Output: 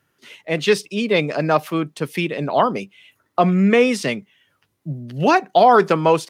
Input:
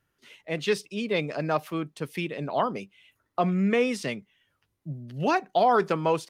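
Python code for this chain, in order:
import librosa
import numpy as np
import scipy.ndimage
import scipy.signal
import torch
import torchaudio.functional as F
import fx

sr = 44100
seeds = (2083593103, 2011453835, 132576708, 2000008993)

y = scipy.signal.sosfilt(scipy.signal.butter(2, 110.0, 'highpass', fs=sr, output='sos'), x)
y = y * 10.0 ** (9.0 / 20.0)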